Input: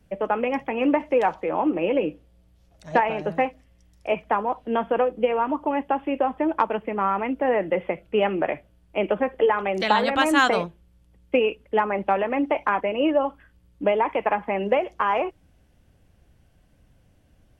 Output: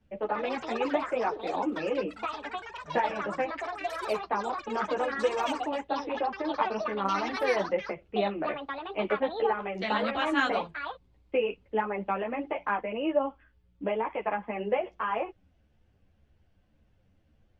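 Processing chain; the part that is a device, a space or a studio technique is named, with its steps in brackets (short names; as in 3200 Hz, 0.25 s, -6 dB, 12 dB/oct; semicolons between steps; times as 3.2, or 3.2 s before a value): string-machine ensemble chorus (ensemble effect; LPF 4600 Hz 12 dB/oct); echoes that change speed 0.142 s, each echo +6 st, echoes 3, each echo -6 dB; gain -4.5 dB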